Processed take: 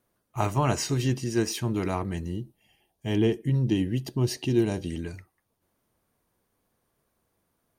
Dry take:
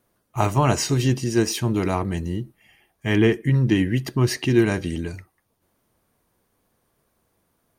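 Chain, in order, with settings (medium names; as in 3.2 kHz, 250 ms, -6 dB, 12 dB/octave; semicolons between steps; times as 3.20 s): 2.31–4.90 s: high-order bell 1.6 kHz -9.5 dB 1.3 oct; trim -5.5 dB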